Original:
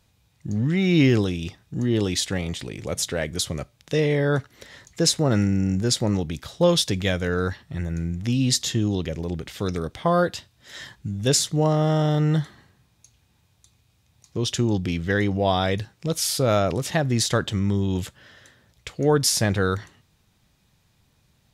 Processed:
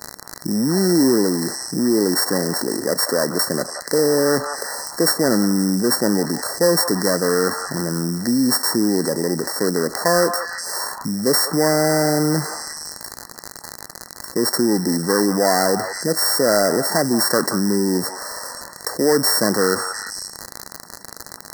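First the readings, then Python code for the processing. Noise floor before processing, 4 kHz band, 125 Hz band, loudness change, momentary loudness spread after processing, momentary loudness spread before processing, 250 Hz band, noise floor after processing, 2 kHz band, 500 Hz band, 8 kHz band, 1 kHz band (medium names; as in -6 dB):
-65 dBFS, +4.5 dB, -4.5 dB, +4.5 dB, 15 LU, 12 LU, +5.0 dB, -40 dBFS, +5.5 dB, +6.0 dB, +6.5 dB, +6.0 dB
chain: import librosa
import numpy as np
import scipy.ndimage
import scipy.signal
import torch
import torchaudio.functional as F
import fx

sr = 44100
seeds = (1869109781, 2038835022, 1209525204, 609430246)

p1 = np.r_[np.sort(x[:len(x) // 16 * 16].reshape(-1, 16), axis=1).ravel(), x[len(x) // 16 * 16:]]
p2 = fx.noise_reduce_blind(p1, sr, reduce_db=12)
p3 = scipy.signal.sosfilt(scipy.signal.butter(4, 220.0, 'highpass', fs=sr, output='sos'), p2)
p4 = np.clip(10.0 ** (20.5 / 20.0) * p3, -1.0, 1.0) / 10.0 ** (20.5 / 20.0)
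p5 = p3 + (p4 * librosa.db_to_amplitude(-6.0))
p6 = fx.dmg_crackle(p5, sr, seeds[0], per_s=68.0, level_db=-35.0)
p7 = fx.brickwall_bandstop(p6, sr, low_hz=2000.0, high_hz=4000.0)
p8 = p7 + fx.echo_stepped(p7, sr, ms=176, hz=990.0, octaves=1.4, feedback_pct=70, wet_db=-10.0, dry=0)
p9 = fx.env_flatten(p8, sr, amount_pct=50)
y = p9 * librosa.db_to_amplitude(1.0)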